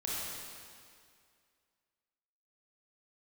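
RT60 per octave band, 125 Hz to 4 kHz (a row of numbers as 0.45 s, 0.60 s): 2.0 s, 2.1 s, 2.2 s, 2.2 s, 2.1 s, 2.0 s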